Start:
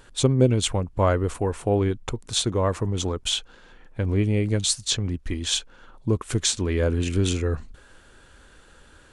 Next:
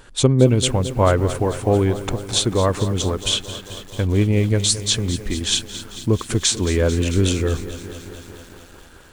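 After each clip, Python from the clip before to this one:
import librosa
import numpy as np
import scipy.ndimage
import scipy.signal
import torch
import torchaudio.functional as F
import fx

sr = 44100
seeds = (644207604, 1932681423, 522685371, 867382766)

y = fx.echo_crushed(x, sr, ms=221, feedback_pct=80, bits=7, wet_db=-13.5)
y = y * librosa.db_to_amplitude(4.5)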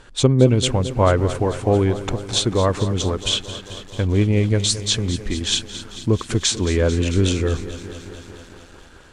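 y = scipy.signal.sosfilt(scipy.signal.butter(2, 7600.0, 'lowpass', fs=sr, output='sos'), x)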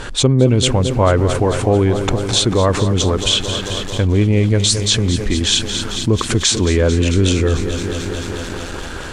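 y = fx.env_flatten(x, sr, amount_pct=50)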